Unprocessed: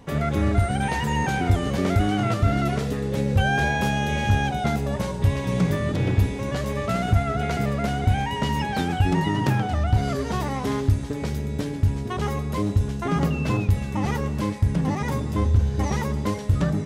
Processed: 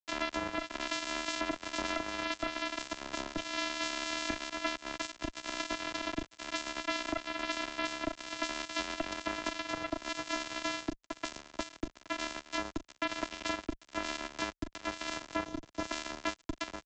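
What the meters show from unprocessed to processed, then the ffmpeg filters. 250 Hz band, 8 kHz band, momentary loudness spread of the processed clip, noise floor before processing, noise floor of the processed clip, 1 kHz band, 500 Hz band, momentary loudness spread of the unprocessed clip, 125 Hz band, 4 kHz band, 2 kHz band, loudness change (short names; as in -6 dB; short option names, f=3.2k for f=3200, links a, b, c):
-15.5 dB, -3.5 dB, 6 LU, -30 dBFS, -66 dBFS, -11.0 dB, -12.0 dB, 4 LU, -33.0 dB, -2.5 dB, -7.0 dB, -13.0 dB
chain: -af "afftfilt=real='hypot(re,im)*cos(PI*b)':imag='0':win_size=512:overlap=0.75,acompressor=threshold=-27dB:ratio=10,aresample=16000,acrusher=bits=3:mix=0:aa=0.5,aresample=44100,highpass=57,afreqshift=-35"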